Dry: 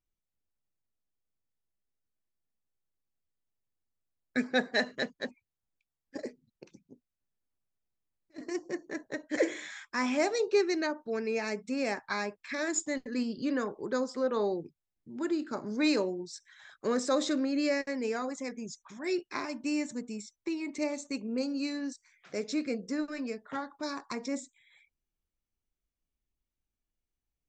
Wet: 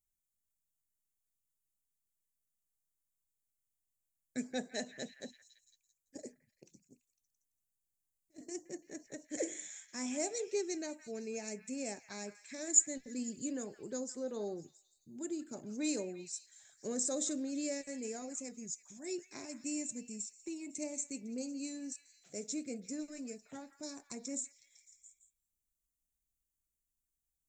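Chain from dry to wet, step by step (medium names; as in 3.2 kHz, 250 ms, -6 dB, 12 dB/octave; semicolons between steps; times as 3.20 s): FFT filter 140 Hz 0 dB, 480 Hz -5 dB, 710 Hz -4 dB, 1.1 kHz -17 dB, 2.7 kHz -6 dB, 4.7 kHz -5 dB, 7 kHz +13 dB; on a send: repeats whose band climbs or falls 168 ms, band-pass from 1.7 kHz, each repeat 0.7 oct, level -10 dB; on the sum: trim -5.5 dB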